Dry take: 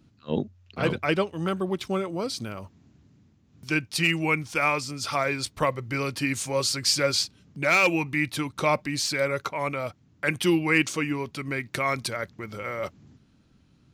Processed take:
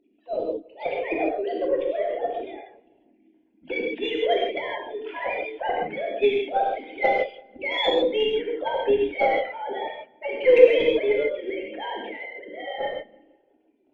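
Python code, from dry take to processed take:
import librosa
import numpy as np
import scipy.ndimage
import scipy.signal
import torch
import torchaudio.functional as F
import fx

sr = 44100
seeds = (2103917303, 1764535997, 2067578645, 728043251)

p1 = fx.sine_speech(x, sr)
p2 = fx.pitch_keep_formants(p1, sr, semitones=6.5)
p3 = fx.peak_eq(p2, sr, hz=560.0, db=10.0, octaves=1.8)
p4 = fx.fixed_phaser(p3, sr, hz=2900.0, stages=4)
p5 = fx.cheby_harmonics(p4, sr, harmonics=(6, 8), levels_db=(-31, -43), full_scale_db=-3.5)
p6 = p5 + fx.echo_filtered(p5, sr, ms=169, feedback_pct=45, hz=2800.0, wet_db=-23, dry=0)
p7 = fx.rev_gated(p6, sr, seeds[0], gate_ms=180, shape='flat', drr_db=-2.0)
y = p7 * librosa.db_to_amplitude(-4.5)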